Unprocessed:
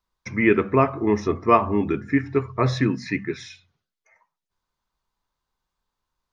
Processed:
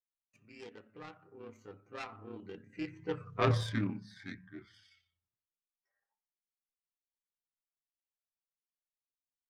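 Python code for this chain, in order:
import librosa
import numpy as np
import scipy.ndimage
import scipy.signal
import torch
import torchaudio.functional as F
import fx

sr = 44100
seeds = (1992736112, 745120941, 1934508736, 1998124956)

y = fx.self_delay(x, sr, depth_ms=0.26)
y = fx.doppler_pass(y, sr, speed_mps=44, closest_m=5.3, pass_at_s=2.32)
y = fx.stretch_grains(y, sr, factor=1.5, grain_ms=60.0)
y = F.gain(torch.from_numpy(y), -6.0).numpy()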